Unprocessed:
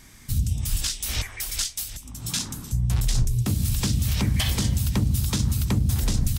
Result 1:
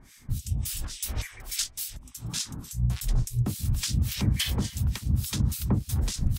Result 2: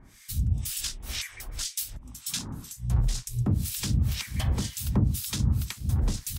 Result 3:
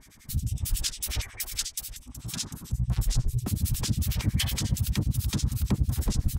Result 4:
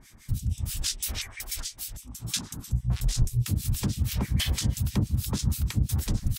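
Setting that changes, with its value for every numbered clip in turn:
harmonic tremolo, rate: 3.5, 2, 11, 6.2 Hz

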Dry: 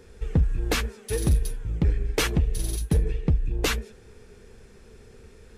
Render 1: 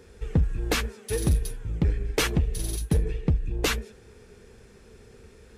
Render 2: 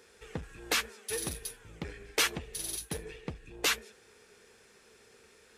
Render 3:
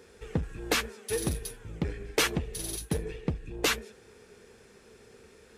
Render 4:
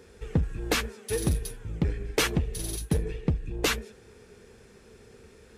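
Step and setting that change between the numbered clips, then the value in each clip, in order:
HPF, cutoff: 41, 1100, 310, 120 Hz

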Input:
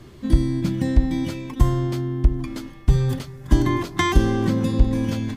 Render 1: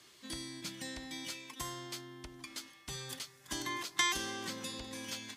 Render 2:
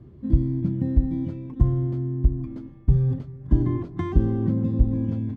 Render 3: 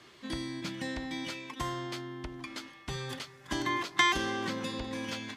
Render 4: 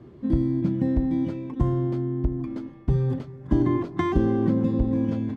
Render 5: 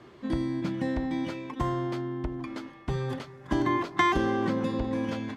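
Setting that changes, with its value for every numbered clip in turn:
band-pass, frequency: 7300, 110, 2800, 290, 980 Hz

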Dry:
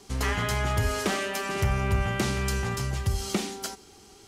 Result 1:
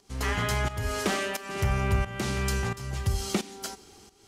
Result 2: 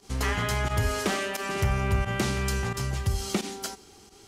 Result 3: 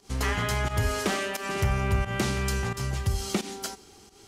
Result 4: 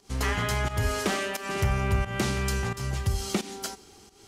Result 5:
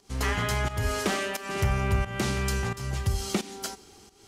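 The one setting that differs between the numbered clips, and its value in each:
pump, release: 494, 69, 131, 202, 296 ms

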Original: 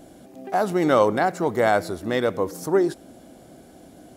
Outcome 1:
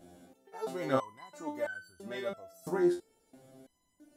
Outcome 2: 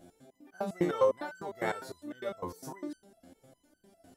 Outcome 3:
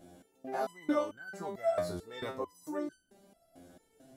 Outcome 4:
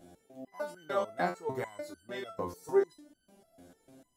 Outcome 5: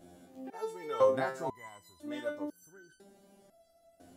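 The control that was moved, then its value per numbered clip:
stepped resonator, rate: 3, 9.9, 4.5, 6.7, 2 Hz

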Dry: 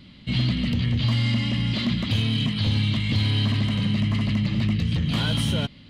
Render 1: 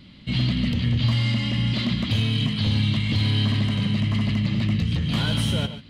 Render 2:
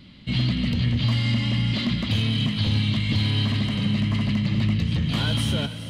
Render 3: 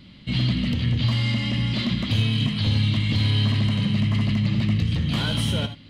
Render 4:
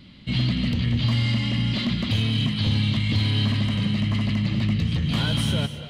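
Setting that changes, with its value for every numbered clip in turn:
non-linear reverb, gate: 0.16, 0.48, 0.1, 0.29 s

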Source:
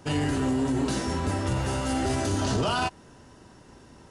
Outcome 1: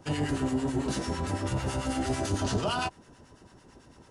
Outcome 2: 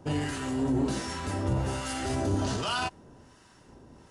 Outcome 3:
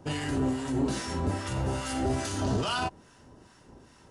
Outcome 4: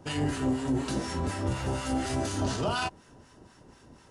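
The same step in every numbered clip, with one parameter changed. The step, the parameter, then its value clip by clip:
harmonic tremolo, rate: 9, 1.3, 2.4, 4.1 Hz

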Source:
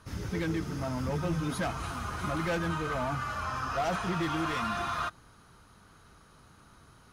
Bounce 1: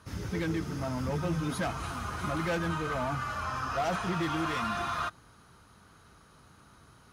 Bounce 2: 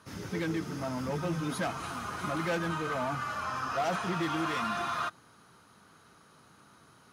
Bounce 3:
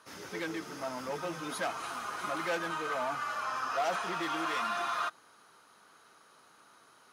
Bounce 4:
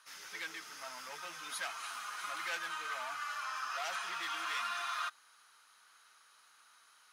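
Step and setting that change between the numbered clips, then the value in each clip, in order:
HPF, cutoff: 44, 150, 420, 1500 Hz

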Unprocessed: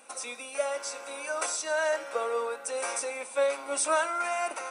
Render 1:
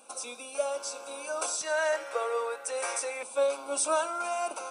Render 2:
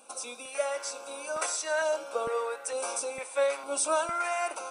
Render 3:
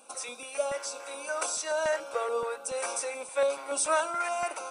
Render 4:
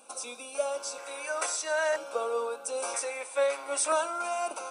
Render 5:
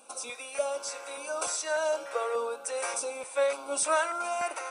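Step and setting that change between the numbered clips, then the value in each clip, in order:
LFO notch, rate: 0.31, 1.1, 3.5, 0.51, 1.7 Hz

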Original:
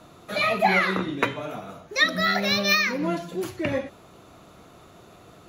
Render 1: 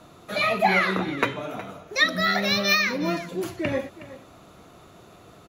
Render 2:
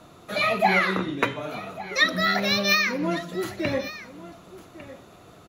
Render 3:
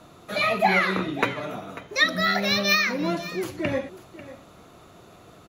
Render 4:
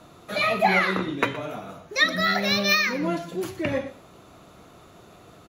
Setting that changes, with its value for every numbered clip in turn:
echo, time: 0.367, 1.152, 0.544, 0.119 s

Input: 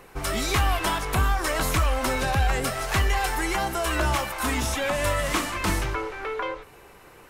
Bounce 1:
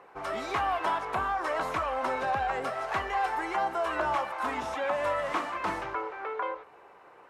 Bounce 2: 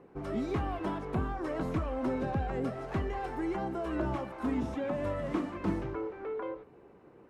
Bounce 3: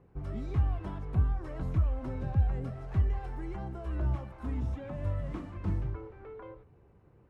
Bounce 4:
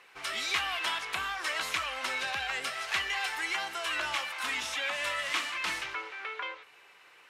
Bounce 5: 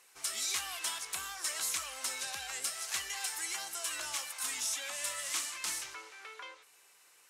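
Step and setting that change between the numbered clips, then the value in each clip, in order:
band-pass, frequency: 850, 260, 100, 2800, 7400 Hz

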